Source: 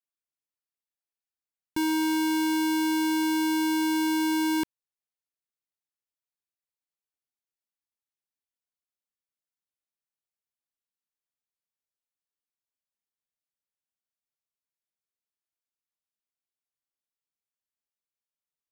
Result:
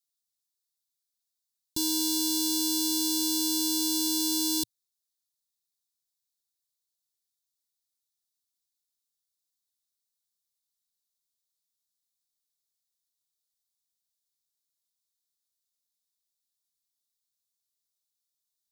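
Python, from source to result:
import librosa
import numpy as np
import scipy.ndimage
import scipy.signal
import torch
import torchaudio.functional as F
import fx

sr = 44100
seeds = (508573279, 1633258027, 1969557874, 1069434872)

y = fx.curve_eq(x, sr, hz=(110.0, 720.0, 2100.0, 3700.0), db=(0, -11, -25, 10))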